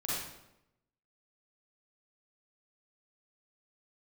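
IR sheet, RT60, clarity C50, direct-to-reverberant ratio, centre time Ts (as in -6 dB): 0.90 s, -3.0 dB, -8.0 dB, 81 ms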